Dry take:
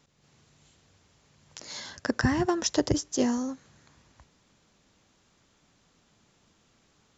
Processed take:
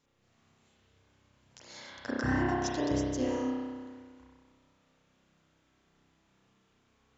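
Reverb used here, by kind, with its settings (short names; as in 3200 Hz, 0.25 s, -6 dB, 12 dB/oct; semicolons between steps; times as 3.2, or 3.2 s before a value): spring tank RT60 1.7 s, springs 31 ms, chirp 75 ms, DRR -7 dB; gain -11 dB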